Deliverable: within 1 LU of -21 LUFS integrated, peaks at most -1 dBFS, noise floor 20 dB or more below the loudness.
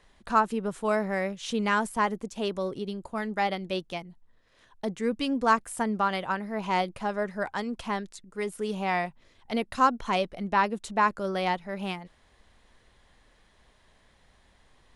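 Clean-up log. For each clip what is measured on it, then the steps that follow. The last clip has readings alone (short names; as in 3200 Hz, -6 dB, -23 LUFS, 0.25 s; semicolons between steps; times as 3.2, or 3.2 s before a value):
loudness -29.0 LUFS; peak -9.5 dBFS; loudness target -21.0 LUFS
-> gain +8 dB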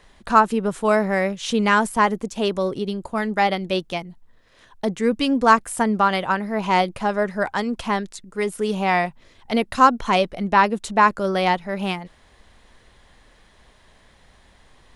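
loudness -21.0 LUFS; peak -1.5 dBFS; noise floor -55 dBFS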